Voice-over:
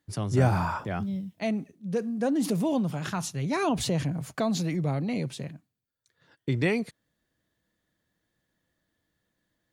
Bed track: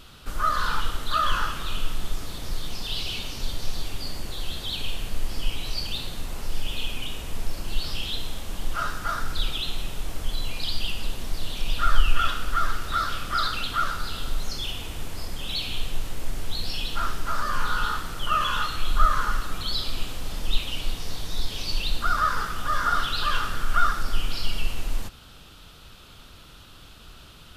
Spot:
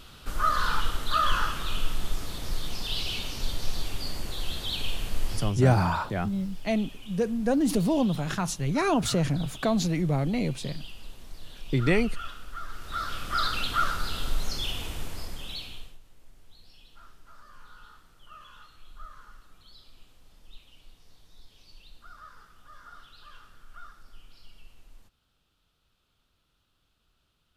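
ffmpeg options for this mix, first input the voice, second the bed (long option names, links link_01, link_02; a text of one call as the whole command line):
ffmpeg -i stem1.wav -i stem2.wav -filter_complex "[0:a]adelay=5250,volume=2dB[link_01];[1:a]volume=13dB,afade=type=out:start_time=5.33:duration=0.22:silence=0.211349,afade=type=in:start_time=12.67:duration=0.92:silence=0.199526,afade=type=out:start_time=14.85:duration=1.13:silence=0.0562341[link_02];[link_01][link_02]amix=inputs=2:normalize=0" out.wav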